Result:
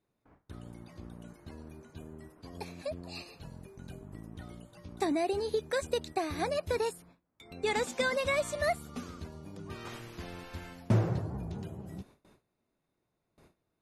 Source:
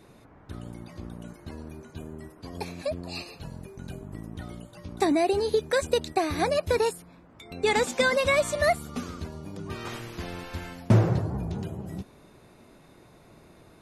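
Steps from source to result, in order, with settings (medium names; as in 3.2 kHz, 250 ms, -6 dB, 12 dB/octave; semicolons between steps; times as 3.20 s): gate with hold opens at -41 dBFS; trim -7 dB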